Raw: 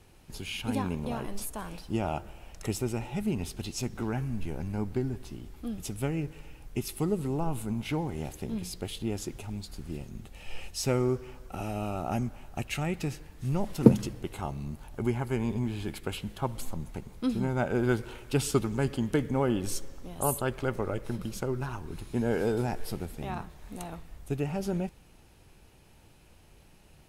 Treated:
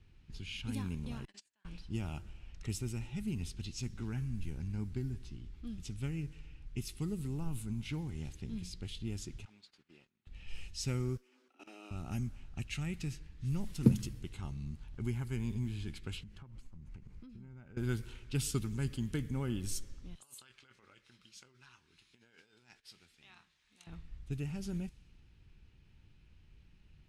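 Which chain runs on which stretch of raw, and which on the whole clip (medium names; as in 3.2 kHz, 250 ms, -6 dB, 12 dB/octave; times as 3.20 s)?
1.25–1.65 s: gate -32 dBFS, range -28 dB + cabinet simulation 460–9800 Hz, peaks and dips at 470 Hz -7 dB, 1.2 kHz -7 dB, 1.7 kHz +9 dB, 2.8 kHz +4 dB, 4.5 kHz +5 dB, 7.4 kHz +8 dB
9.45–10.27 s: high-pass 590 Hz + treble shelf 3.2 kHz -4.5 dB + gate -57 dBFS, range -16 dB
11.17–11.91 s: steep high-pass 240 Hz 96 dB/octave + level held to a coarse grid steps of 19 dB
16.23–17.77 s: peaking EQ 3.6 kHz -8 dB 0.51 oct + compression 10:1, threshold -41 dBFS
20.15–23.87 s: doubling 24 ms -12 dB + compressor with a negative ratio -31 dBFS, ratio -0.5 + band-pass filter 7.6 kHz, Q 0.5
whole clip: level-controlled noise filter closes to 3 kHz, open at -25 dBFS; amplifier tone stack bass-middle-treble 6-0-2; trim +10.5 dB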